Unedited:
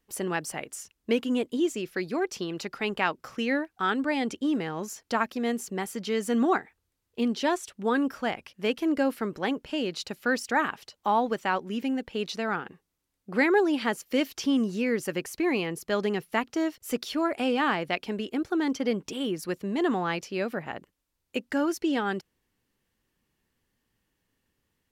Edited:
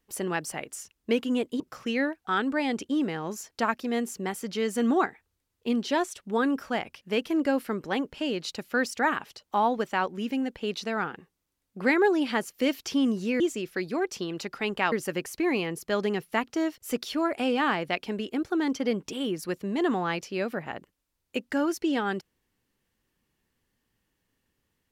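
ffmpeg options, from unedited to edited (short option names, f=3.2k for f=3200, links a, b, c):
-filter_complex "[0:a]asplit=4[a][b][c][d];[a]atrim=end=1.602[e];[b]atrim=start=3.118:end=14.922[f];[c]atrim=start=1.598:end=3.122[g];[d]atrim=start=14.918[h];[e][f]acrossfade=d=0.004:c1=hsin:c2=hsin[i];[i][g]acrossfade=d=0.004:c1=hsin:c2=hsin[j];[j][h]acrossfade=d=0.004:c1=hsin:c2=hsin"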